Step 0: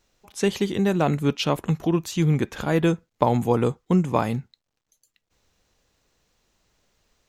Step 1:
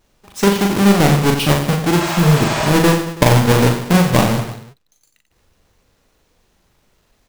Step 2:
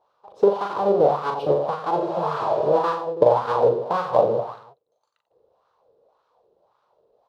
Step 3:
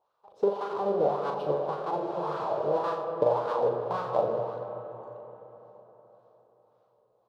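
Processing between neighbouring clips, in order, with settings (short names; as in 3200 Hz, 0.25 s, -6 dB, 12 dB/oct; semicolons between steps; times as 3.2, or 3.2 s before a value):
half-waves squared off; reverse bouncing-ball echo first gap 40 ms, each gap 1.25×, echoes 5; spectral repair 2.03–2.68, 540–9100 Hz both; gain +1.5 dB
graphic EQ 125/250/500/1000/2000/4000/8000 Hz +6/-7/+10/+6/-11/+9/-4 dB; in parallel at +1 dB: compressor, threshold -16 dBFS, peak gain reduction 13.5 dB; on the sum: wah 1.8 Hz 420–1300 Hz, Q 2.9; gain -5.5 dB
reverb RT60 4.1 s, pre-delay 70 ms, DRR 7 dB; gain -8.5 dB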